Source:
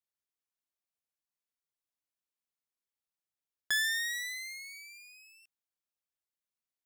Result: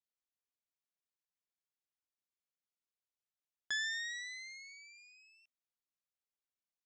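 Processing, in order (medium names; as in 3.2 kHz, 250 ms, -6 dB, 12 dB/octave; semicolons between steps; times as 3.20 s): elliptic low-pass 7.2 kHz, stop band 50 dB; trim -6 dB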